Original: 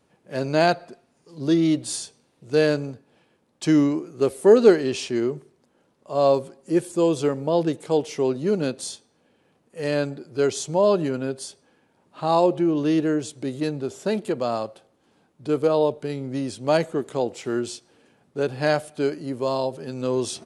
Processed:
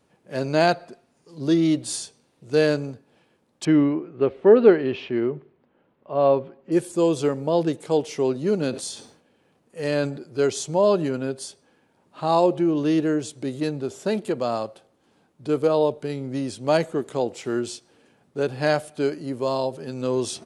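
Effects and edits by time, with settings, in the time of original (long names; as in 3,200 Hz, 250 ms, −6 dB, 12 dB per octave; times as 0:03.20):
0:03.65–0:06.72: low-pass filter 3,000 Hz 24 dB per octave
0:08.70–0:10.24: level that may fall only so fast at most 92 dB per second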